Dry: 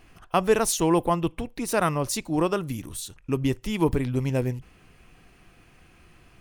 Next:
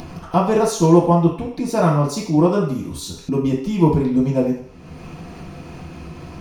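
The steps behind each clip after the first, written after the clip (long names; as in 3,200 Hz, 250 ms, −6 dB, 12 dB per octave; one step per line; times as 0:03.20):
convolution reverb RT60 0.55 s, pre-delay 3 ms, DRR −10.5 dB
upward compression, threshold −10 dBFS
level −11 dB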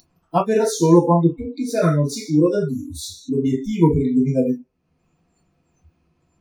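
noise reduction from a noise print of the clip's start 30 dB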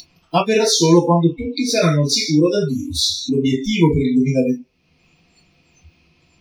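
flat-topped bell 3,500 Hz +13.5 dB
in parallel at +3 dB: downward compressor, threshold −25 dBFS, peak gain reduction 16.5 dB
on the sum: level −1.5 dB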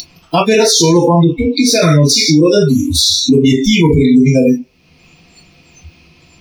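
high-shelf EQ 7,400 Hz +5 dB
boost into a limiter +12 dB
level −1 dB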